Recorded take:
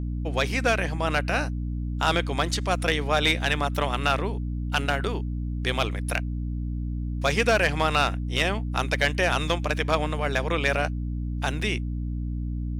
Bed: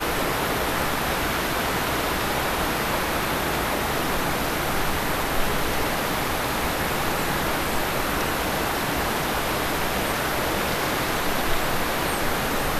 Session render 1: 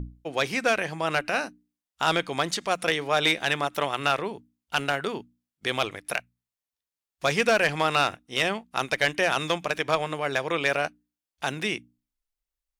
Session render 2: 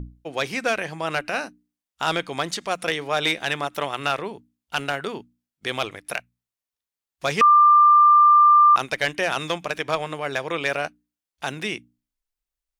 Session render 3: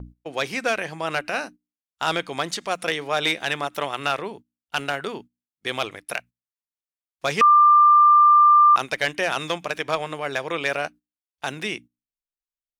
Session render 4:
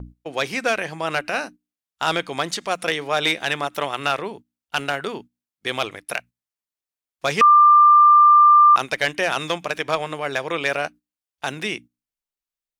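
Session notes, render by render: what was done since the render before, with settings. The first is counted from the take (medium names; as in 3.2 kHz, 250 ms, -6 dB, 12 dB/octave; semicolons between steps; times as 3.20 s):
hum notches 60/120/180/240/300 Hz
7.41–8.76 s: bleep 1.19 kHz -10 dBFS
gate -41 dBFS, range -13 dB; bass shelf 120 Hz -5 dB
trim +2 dB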